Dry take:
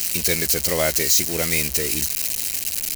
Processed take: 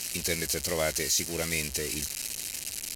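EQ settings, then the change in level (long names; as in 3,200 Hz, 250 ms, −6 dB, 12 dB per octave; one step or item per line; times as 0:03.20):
Bessel low-pass filter 11,000 Hz, order 6
−7.0 dB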